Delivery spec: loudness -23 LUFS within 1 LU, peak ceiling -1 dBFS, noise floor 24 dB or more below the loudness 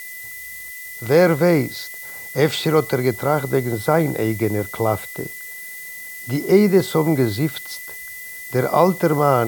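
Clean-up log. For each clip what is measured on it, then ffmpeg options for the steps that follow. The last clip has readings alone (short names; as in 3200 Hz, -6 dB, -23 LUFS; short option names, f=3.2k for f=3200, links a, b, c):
steady tone 2000 Hz; tone level -34 dBFS; noise floor -35 dBFS; noise floor target -43 dBFS; loudness -19.0 LUFS; peak -1.5 dBFS; loudness target -23.0 LUFS
-> -af "bandreject=f=2k:w=30"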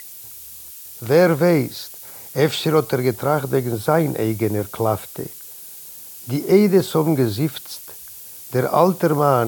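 steady tone none; noise floor -38 dBFS; noise floor target -43 dBFS
-> -af "afftdn=nr=6:nf=-38"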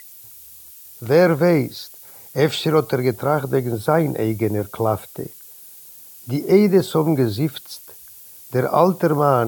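noise floor -43 dBFS; loudness -19.0 LUFS; peak -2.0 dBFS; loudness target -23.0 LUFS
-> -af "volume=-4dB"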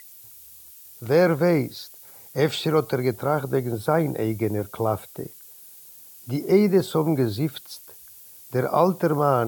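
loudness -23.0 LUFS; peak -6.0 dBFS; noise floor -47 dBFS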